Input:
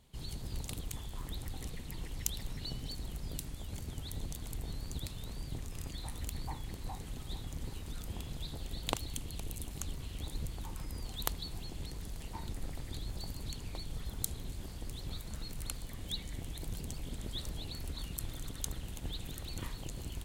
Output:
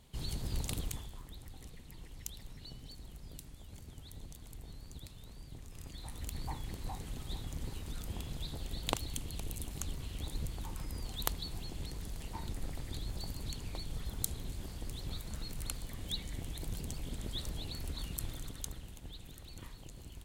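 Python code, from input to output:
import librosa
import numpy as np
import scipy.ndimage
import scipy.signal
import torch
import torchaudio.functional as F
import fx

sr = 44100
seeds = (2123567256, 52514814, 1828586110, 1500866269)

y = fx.gain(x, sr, db=fx.line((0.84, 3.5), (1.25, -8.5), (5.55, -8.5), (6.5, 0.5), (18.26, 0.5), (19.06, -8.0)))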